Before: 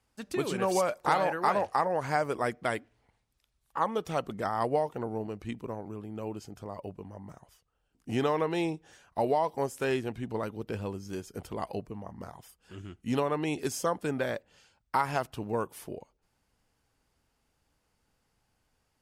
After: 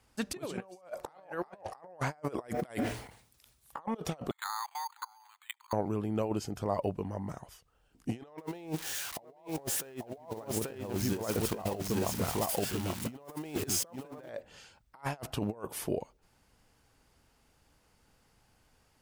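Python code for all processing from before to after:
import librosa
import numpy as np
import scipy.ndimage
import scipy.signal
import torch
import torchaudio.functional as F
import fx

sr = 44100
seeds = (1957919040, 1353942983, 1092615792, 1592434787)

y = fx.chain(x, sr, fx.highpass(hz=63.0, slope=12),
    fx.high_shelf(hz=7500.0, db=11.5),
    fx.sustainer(db_per_s=85.0), at=(2.48, 3.79))
y = fx.chain(y, sr, fx.steep_highpass(hz=850.0, slope=96),
    fx.level_steps(step_db=22),
    fx.resample_bad(factor=8, down='filtered', up='hold'), at=(4.31, 5.73))
y = fx.chain(y, sr, fx.crossing_spikes(level_db=-30.5),
    fx.high_shelf(hz=5200.0, db=-8.5),
    fx.echo_single(ms=837, db=-3.5), at=(8.38, 14.29))
y = fx.dynamic_eq(y, sr, hz=650.0, q=1.6, threshold_db=-42.0, ratio=4.0, max_db=6)
y = fx.over_compress(y, sr, threshold_db=-36.0, ratio=-0.5)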